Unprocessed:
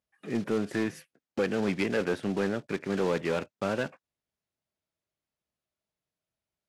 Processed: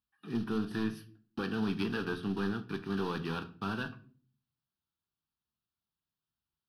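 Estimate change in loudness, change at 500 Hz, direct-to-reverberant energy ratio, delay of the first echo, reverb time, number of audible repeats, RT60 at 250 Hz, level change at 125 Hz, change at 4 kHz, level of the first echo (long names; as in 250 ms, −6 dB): −5.0 dB, −10.0 dB, 9.0 dB, no echo audible, 0.45 s, no echo audible, 0.70 s, −1.5 dB, −2.0 dB, no echo audible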